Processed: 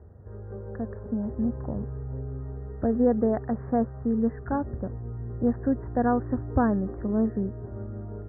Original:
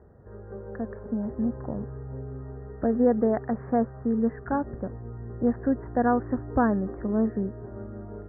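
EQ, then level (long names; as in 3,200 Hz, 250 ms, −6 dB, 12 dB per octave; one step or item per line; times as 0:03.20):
high-frequency loss of the air 450 metres
parametric band 84 Hz +10.5 dB 0.71 octaves
0.0 dB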